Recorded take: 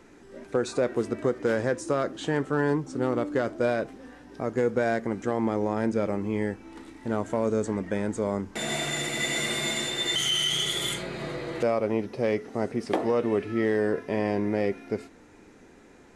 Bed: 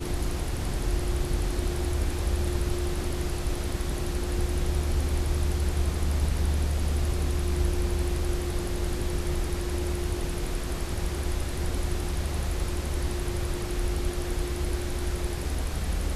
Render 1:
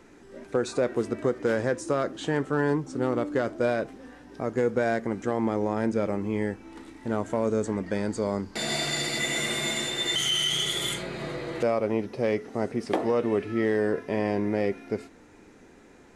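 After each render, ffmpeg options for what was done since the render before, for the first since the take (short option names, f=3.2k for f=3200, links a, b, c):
-filter_complex "[0:a]asettb=1/sr,asplit=3[a][b][c];[a]atrim=end=7.864[d];[b]atrim=start=7.86:end=9.19,asetpts=PTS-STARTPTS,afade=t=in:d=0.004:c=qsin,afade=t=out:st=1.326:d=0.004:c=qsin,equalizer=f=4.6k:t=o:w=0.23:g=15[e];[c]atrim=start=9.186[f];[d][e]acrossfade=d=0.004:c1=hsin:c2=qsin[g];[g][f]acrossfade=d=0.004:c1=qsin:c2=hsin"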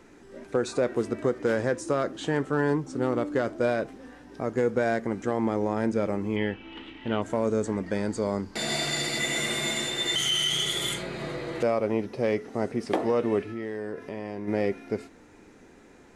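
-filter_complex "[0:a]asettb=1/sr,asplit=3[a][b][c];[a]atrim=end=6.364[d];[b]atrim=start=6.36:end=7.22,asetpts=PTS-STARTPTS,afade=t=in:d=0.004:c=qsin,afade=t=out:st=0.856:d=0.004:c=qsin,lowpass=f=3k:t=q:w=8.6[e];[c]atrim=start=7.216[f];[d][e]acrossfade=d=0.004:c1=hsin:c2=qsin[g];[g][f]acrossfade=d=0.004:c1=qsin:c2=hsin,asplit=3[h][i][j];[h]afade=t=out:st=13.42:d=0.02[k];[i]acompressor=threshold=-34dB:ratio=2.5:attack=3.2:release=140:knee=1:detection=peak,afade=t=in:st=13.42:d=0.02,afade=t=out:st=14.47:d=0.02[l];[j]afade=t=in:st=14.47:d=0.02[m];[k][l][m]amix=inputs=3:normalize=0"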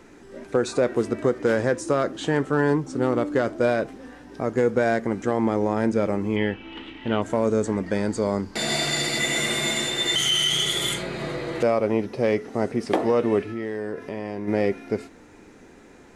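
-af "volume=4dB"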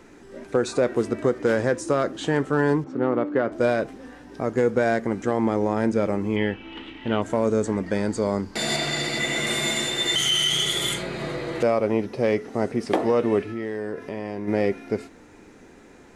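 -filter_complex "[0:a]asettb=1/sr,asplit=3[a][b][c];[a]atrim=end=2.844[d];[b]atrim=start=2.84:end=3.52,asetpts=PTS-STARTPTS,afade=t=in:d=0.004:c=qsin,afade=t=out:st=0.676:d=0.004:c=qsin,highpass=140,lowpass=2.3k[e];[c]atrim=start=3.516[f];[d][e]acrossfade=d=0.004:c1=hsin:c2=qsin[g];[g][f]acrossfade=d=0.004:c1=qsin:c2=hsin,asettb=1/sr,asplit=3[h][i][j];[h]atrim=end=8.764[k];[i]atrim=start=8.76:end=9.47,asetpts=PTS-STARTPTS,afade=t=in:d=0.004:c=qsin,afade=t=out:st=0.706:d=0.004:c=qsin,highshelf=f=6.2k:g=-9[l];[j]atrim=start=9.466[m];[k][l]acrossfade=d=0.004:c1=hsin:c2=qsin[n];[n][m]acrossfade=d=0.004:c1=qsin:c2=hsin"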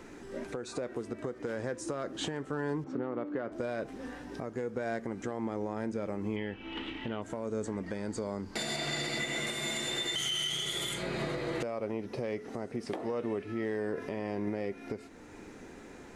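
-af "acompressor=threshold=-27dB:ratio=6,alimiter=limit=-24dB:level=0:latency=1:release=465"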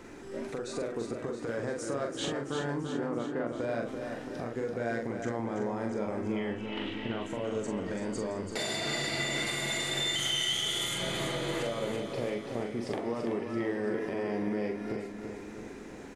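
-filter_complex "[0:a]asplit=2[a][b];[b]adelay=43,volume=-4dB[c];[a][c]amix=inputs=2:normalize=0,asplit=2[d][e];[e]aecho=0:1:336|672|1008|1344|1680|2016|2352:0.447|0.259|0.15|0.0872|0.0505|0.0293|0.017[f];[d][f]amix=inputs=2:normalize=0"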